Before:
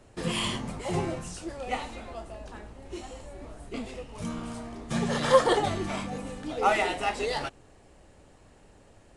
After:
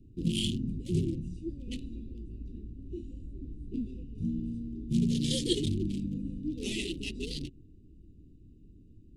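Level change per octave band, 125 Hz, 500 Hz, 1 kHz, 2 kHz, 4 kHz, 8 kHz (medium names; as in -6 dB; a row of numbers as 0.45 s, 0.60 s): +3.0 dB, -12.0 dB, under -40 dB, -14.0 dB, -1.5 dB, -3.0 dB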